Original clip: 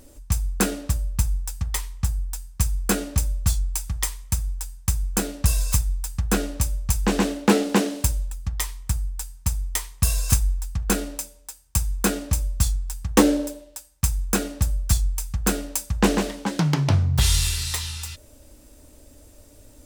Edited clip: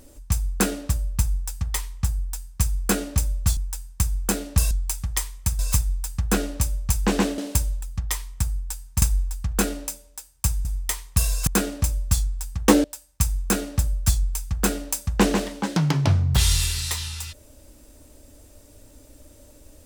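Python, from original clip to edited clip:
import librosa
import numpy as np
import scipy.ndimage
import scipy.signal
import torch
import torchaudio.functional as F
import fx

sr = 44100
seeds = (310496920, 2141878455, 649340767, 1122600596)

y = fx.edit(x, sr, fx.move(start_s=3.57, length_s=0.88, to_s=5.59),
    fx.cut(start_s=7.38, length_s=0.49),
    fx.move(start_s=9.51, length_s=0.82, to_s=11.96),
    fx.cut(start_s=13.33, length_s=0.34), tone=tone)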